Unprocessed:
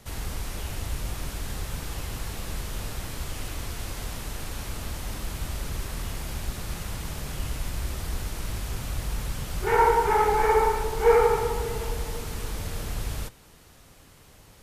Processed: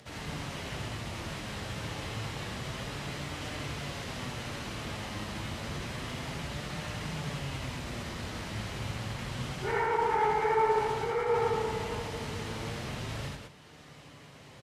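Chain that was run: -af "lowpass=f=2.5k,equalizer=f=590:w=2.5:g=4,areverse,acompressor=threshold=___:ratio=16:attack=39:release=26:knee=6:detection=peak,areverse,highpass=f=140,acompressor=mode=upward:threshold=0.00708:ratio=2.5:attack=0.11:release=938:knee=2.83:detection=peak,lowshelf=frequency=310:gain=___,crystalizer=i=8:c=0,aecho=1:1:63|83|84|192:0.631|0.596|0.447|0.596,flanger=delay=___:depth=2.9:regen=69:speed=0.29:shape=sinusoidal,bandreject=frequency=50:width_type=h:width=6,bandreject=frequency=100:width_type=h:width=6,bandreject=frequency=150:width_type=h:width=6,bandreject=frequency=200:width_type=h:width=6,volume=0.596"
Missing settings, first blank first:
0.0316, 11.5, 6.6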